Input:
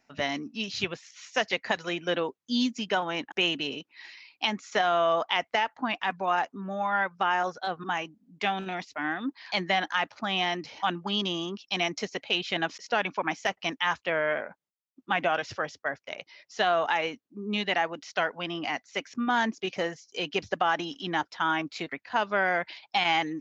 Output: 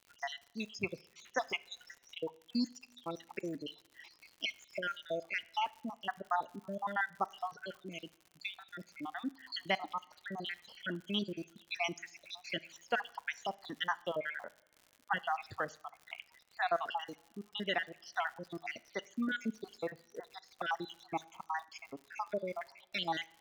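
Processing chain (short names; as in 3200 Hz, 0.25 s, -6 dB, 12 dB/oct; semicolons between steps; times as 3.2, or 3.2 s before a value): random spectral dropouts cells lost 72%; two-slope reverb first 0.56 s, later 2.3 s, from -18 dB, DRR 18 dB; crackle 110/s -42 dBFS; gain -5 dB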